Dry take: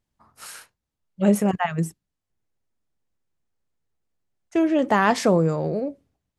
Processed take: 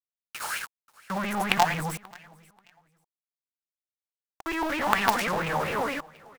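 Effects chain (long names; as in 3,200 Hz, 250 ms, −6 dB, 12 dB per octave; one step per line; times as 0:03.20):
every overlapping window played backwards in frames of 224 ms
in parallel at −1.5 dB: brickwall limiter −16.5 dBFS, peak gain reduction 9 dB
on the sum: asymmetric clip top −27.5 dBFS
log-companded quantiser 2 bits
on a send: repeating echo 535 ms, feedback 22%, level −23.5 dB
on the sum: auto-filter bell 4.3 Hz 790–2,600 Hz +17 dB
level −7 dB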